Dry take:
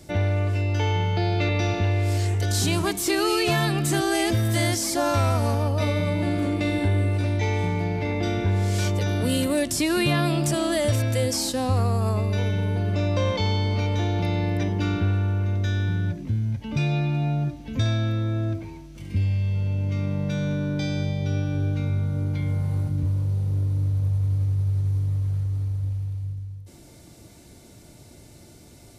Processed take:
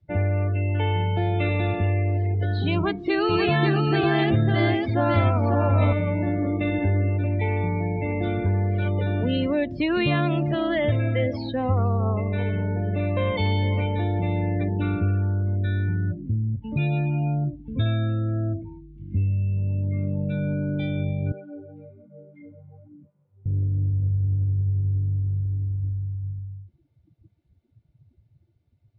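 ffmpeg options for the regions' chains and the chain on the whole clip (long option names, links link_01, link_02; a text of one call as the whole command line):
ffmpeg -i in.wav -filter_complex "[0:a]asettb=1/sr,asplit=3[link_01][link_02][link_03];[link_01]atrim=end=2.744[link_04];[link_02]atrim=start=2.74:end=5.93,asetpts=PTS-STARTPTS,afade=type=in:duration=0.004:curve=qsin,afade=type=out:start_time=3.186:duration=0.004:curve=qsin,equalizer=frequency=180:width_type=o:width=1.1:gain=3,aecho=1:1:550:0.631,atrim=end_sample=140679[link_05];[link_03]atrim=start=5.926[link_06];[link_04][link_05]acrossfade=duration=0.004:curve1=hsin:curve2=qsin[link_07];[link_07][link_06]acrossfade=duration=0.004:curve1=qsin:curve2=hsin,asettb=1/sr,asplit=3[link_08][link_09][link_10];[link_08]atrim=end=10.304[link_11];[link_09]atrim=start=10.3:end=14.01,asetpts=PTS-STARTPTS,afade=type=in:duration=0.004:curve=qsin,afade=type=out:start_time=3.706:duration=0.004:curve=qsin,equalizer=frequency=2000:width_type=o:width=0.4:gain=5,aecho=1:1:454:0.2,atrim=end_sample=163611[link_12];[link_10]atrim=start=14.006[link_13];[link_11][link_12]acrossfade=duration=0.004:curve1=hsin:curve2=qsin[link_14];[link_14][link_13]acrossfade=duration=0.004:curve1=qsin:curve2=hsin,asettb=1/sr,asplit=3[link_15][link_16][link_17];[link_15]atrim=end=21.324[link_18];[link_16]atrim=start=21.32:end=23.46,asetpts=PTS-STARTPTS,afade=type=in:duration=0.004:curve=qsin,afade=type=out:start_time=2.136:duration=0.004:curve=qsin,highpass=340,lowpass=2200,flanger=delay=15:depth=4.3:speed=1.1[link_19];[link_17]atrim=start=23.456[link_20];[link_18][link_19]acrossfade=duration=0.004:curve1=hsin:curve2=qsin[link_21];[link_21][link_20]acrossfade=duration=0.004:curve1=qsin:curve2=hsin,lowpass=frequency=3700:width=0.5412,lowpass=frequency=3700:width=1.3066,afftdn=noise_reduction=29:noise_floor=-32" out.wav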